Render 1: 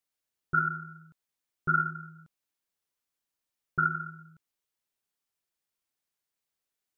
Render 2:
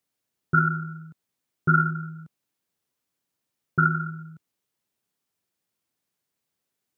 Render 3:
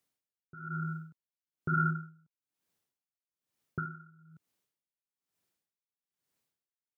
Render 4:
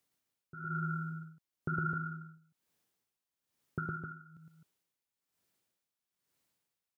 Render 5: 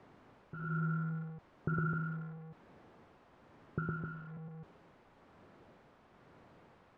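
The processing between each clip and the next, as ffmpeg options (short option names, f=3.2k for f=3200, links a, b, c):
-af "highpass=120,lowshelf=f=350:g=11.5,volume=4dB"
-af "alimiter=limit=-19dB:level=0:latency=1:release=46,aeval=exprs='val(0)*pow(10,-25*(0.5-0.5*cos(2*PI*1.1*n/s))/20)':c=same"
-filter_complex "[0:a]acompressor=threshold=-34dB:ratio=6,asplit=2[a][b];[b]aecho=0:1:110.8|259.5:0.794|0.447[c];[a][c]amix=inputs=2:normalize=0,volume=1dB"
-af "aeval=exprs='val(0)+0.5*0.00562*sgn(val(0))':c=same,lowpass=1.1k,volume=1dB"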